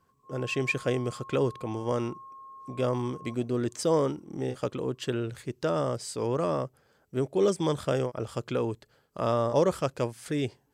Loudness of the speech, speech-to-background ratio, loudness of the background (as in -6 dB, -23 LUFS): -30.0 LUFS, 17.0 dB, -47.0 LUFS